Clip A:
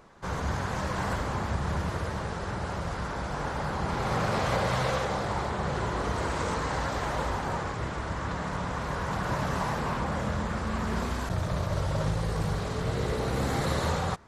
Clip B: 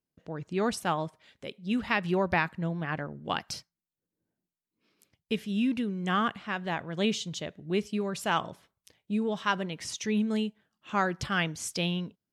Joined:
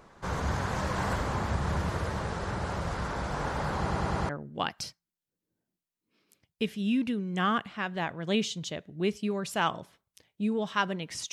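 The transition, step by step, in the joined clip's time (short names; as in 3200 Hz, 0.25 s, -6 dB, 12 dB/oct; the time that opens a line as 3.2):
clip A
3.79 stutter in place 0.10 s, 5 plays
4.29 switch to clip B from 2.99 s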